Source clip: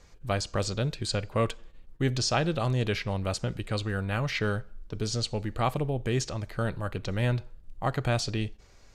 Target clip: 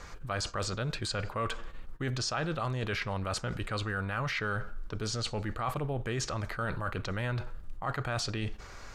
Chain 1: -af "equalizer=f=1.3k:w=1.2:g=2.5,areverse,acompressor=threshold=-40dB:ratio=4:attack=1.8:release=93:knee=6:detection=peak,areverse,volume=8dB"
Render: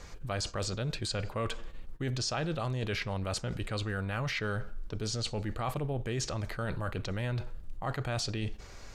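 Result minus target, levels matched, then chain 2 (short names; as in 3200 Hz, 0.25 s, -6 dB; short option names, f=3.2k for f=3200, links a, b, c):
1000 Hz band -3.0 dB
-af "equalizer=f=1.3k:w=1.2:g=10,areverse,acompressor=threshold=-40dB:ratio=4:attack=1.8:release=93:knee=6:detection=peak,areverse,volume=8dB"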